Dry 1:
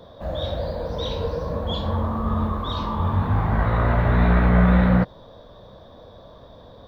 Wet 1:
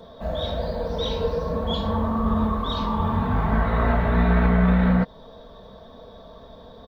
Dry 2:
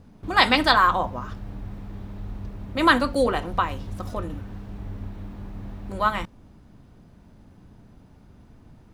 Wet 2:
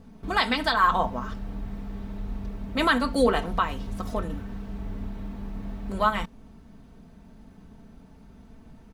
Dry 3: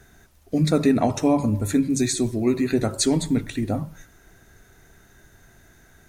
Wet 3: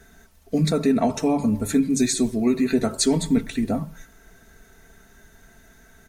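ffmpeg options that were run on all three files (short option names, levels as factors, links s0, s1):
-af "alimiter=limit=0.282:level=0:latency=1:release=298,aecho=1:1:4.5:0.56"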